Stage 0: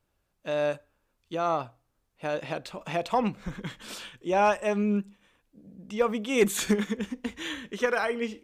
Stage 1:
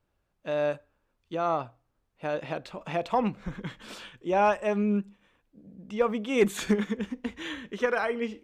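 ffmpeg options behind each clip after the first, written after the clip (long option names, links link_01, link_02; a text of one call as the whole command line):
ffmpeg -i in.wav -af "highshelf=frequency=4800:gain=-10.5" out.wav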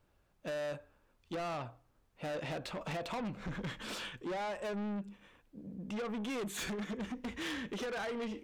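ffmpeg -i in.wav -af "acompressor=threshold=-30dB:ratio=6,asoftclip=type=tanh:threshold=-39.5dB,volume=4dB" out.wav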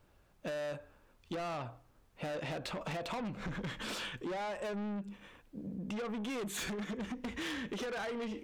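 ffmpeg -i in.wav -af "acompressor=threshold=-43dB:ratio=6,volume=5.5dB" out.wav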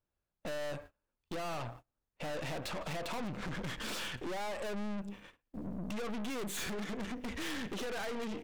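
ffmpeg -i in.wav -filter_complex "[0:a]asplit=2[link_01][link_02];[link_02]adelay=170,highpass=300,lowpass=3400,asoftclip=type=hard:threshold=-40dB,volume=-21dB[link_03];[link_01][link_03]amix=inputs=2:normalize=0,aeval=exprs='(tanh(178*val(0)+0.7)-tanh(0.7))/178':channel_layout=same,agate=range=-26dB:threshold=-57dB:ratio=16:detection=peak,volume=7.5dB" out.wav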